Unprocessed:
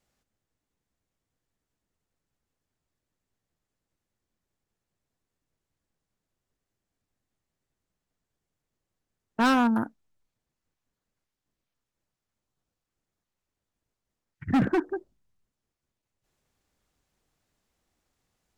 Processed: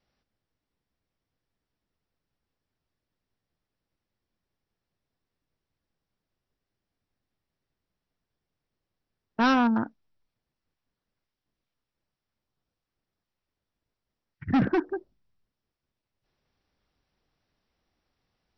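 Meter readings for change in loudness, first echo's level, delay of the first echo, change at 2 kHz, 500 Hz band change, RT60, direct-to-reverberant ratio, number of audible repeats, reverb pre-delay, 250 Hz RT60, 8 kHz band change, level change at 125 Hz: 0.0 dB, none, none, 0.0 dB, 0.0 dB, none, none, none, none, none, n/a, 0.0 dB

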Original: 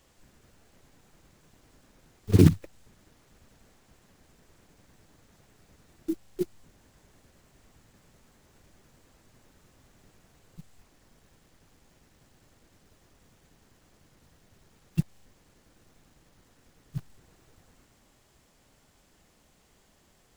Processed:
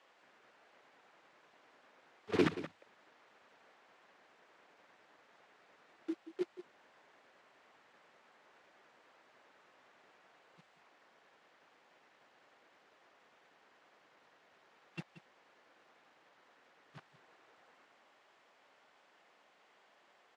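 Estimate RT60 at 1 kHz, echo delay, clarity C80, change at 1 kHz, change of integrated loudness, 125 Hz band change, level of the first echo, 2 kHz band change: none, 0.18 s, none, +2.0 dB, -12.5 dB, -24.0 dB, -14.0 dB, +1.5 dB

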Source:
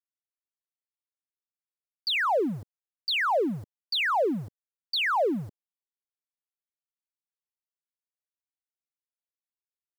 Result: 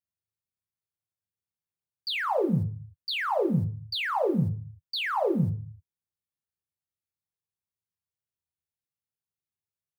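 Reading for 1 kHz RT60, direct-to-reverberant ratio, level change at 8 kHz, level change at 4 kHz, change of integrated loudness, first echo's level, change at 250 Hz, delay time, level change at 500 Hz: 0.45 s, 4.0 dB, n/a, -4.0 dB, -1.5 dB, none, +3.0 dB, none, -0.5 dB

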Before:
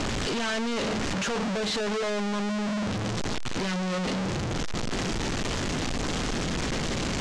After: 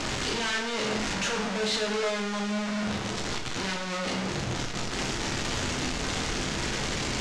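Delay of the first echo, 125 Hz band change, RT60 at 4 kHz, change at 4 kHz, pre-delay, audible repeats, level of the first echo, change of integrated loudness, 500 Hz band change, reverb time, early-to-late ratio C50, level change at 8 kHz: none, -3.0 dB, 0.60 s, +2.0 dB, 12 ms, none, none, -0.5 dB, -1.5 dB, 0.80 s, 6.0 dB, +2.0 dB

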